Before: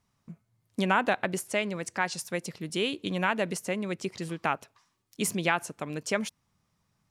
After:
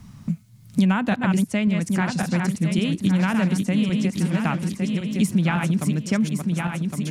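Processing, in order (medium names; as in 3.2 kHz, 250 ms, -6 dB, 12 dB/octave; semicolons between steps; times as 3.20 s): backward echo that repeats 556 ms, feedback 58%, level -5 dB; resonant low shelf 290 Hz +12 dB, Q 1.5; three bands compressed up and down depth 70%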